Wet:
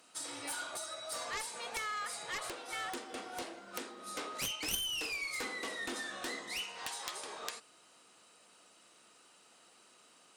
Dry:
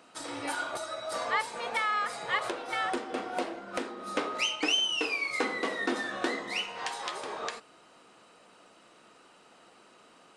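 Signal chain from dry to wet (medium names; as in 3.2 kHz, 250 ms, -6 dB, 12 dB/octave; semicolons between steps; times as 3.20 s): pre-emphasis filter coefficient 0.8; Chebyshev shaper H 3 -12 dB, 7 -16 dB, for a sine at -19.5 dBFS; trim +5.5 dB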